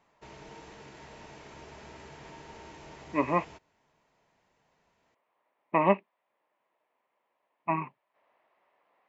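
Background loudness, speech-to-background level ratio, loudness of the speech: -49.0 LUFS, 19.5 dB, -29.5 LUFS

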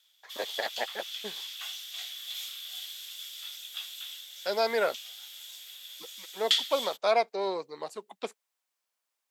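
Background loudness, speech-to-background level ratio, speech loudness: -36.0 LUFS, 4.0 dB, -32.0 LUFS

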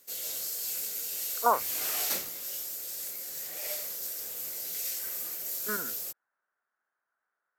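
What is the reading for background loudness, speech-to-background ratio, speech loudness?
-32.5 LUFS, 1.0 dB, -31.5 LUFS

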